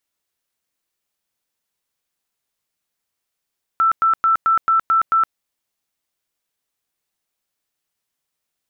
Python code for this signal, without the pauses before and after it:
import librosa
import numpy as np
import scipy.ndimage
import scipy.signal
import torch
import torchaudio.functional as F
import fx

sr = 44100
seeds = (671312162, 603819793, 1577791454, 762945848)

y = fx.tone_burst(sr, hz=1330.0, cycles=155, every_s=0.22, bursts=7, level_db=-12.0)